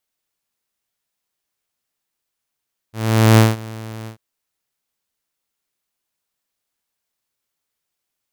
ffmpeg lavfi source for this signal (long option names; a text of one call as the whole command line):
ffmpeg -f lavfi -i "aevalsrc='0.631*(2*mod(111*t,1)-1)':duration=1.241:sample_rate=44100,afade=type=in:duration=0.448,afade=type=out:start_time=0.448:duration=0.181:silence=0.075,afade=type=out:start_time=1.14:duration=0.101" out.wav